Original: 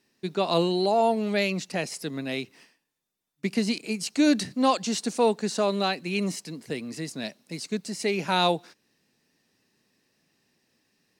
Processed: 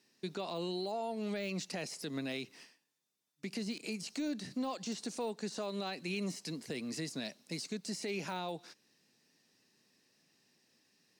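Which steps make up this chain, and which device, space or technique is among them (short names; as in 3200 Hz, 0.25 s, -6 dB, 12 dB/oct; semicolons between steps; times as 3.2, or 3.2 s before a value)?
broadcast voice chain (HPF 110 Hz; de-esser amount 90%; compressor 5:1, threshold -30 dBFS, peak gain reduction 11.5 dB; bell 5500 Hz +5 dB 1.5 oct; limiter -25.5 dBFS, peak gain reduction 6 dB); gain -3.5 dB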